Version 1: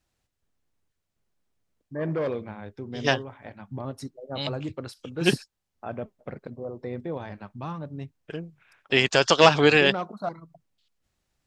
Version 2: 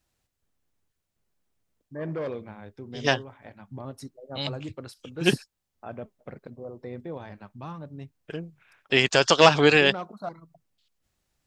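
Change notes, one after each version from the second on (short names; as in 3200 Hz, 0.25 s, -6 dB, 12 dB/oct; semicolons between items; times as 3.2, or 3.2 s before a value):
first voice -4.0 dB; master: add high shelf 10000 Hz +6.5 dB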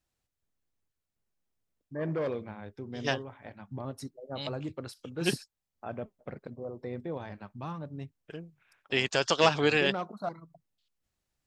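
second voice -7.5 dB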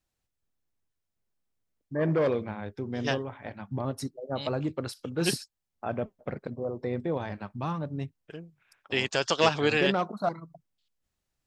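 first voice +6.5 dB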